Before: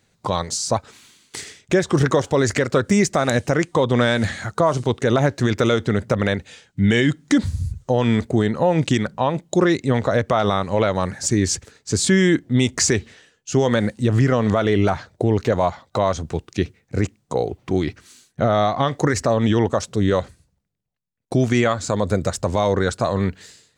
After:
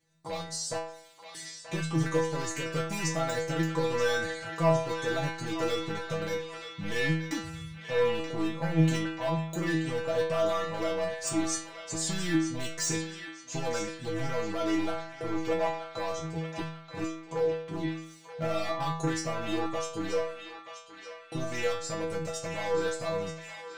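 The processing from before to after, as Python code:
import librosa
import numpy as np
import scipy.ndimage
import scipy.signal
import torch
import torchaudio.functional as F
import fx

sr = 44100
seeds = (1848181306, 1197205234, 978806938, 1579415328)

y = 10.0 ** (-11.0 / 20.0) * (np.abs((x / 10.0 ** (-11.0 / 20.0) + 3.0) % 4.0 - 2.0) - 1.0)
y = fx.stiff_resonator(y, sr, f0_hz=160.0, decay_s=0.67, stiffness=0.002)
y = fx.echo_banded(y, sr, ms=930, feedback_pct=58, hz=2500.0, wet_db=-6)
y = y * librosa.db_to_amplitude(5.5)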